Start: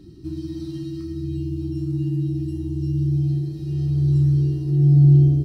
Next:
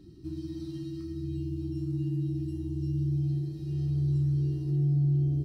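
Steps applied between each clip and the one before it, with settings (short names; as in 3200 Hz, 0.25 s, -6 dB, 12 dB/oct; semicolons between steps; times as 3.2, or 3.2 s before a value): compressor 4:1, threshold -17 dBFS, peak gain reduction 7 dB; gain -7 dB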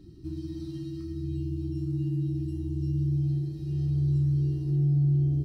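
low shelf 90 Hz +6.5 dB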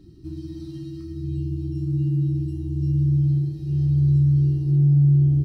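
dynamic EQ 120 Hz, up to +7 dB, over -37 dBFS, Q 1.1; gain +1.5 dB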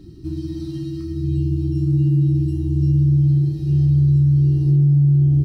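compressor, threshold -19 dBFS, peak gain reduction 5.5 dB; gain +7 dB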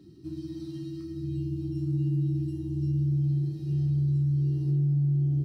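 HPF 130 Hz 12 dB/oct; gain -8.5 dB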